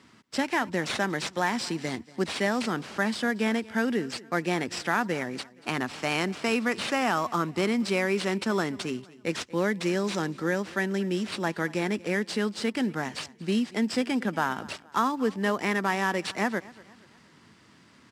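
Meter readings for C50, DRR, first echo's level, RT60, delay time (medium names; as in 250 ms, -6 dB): no reverb, no reverb, -21.0 dB, no reverb, 235 ms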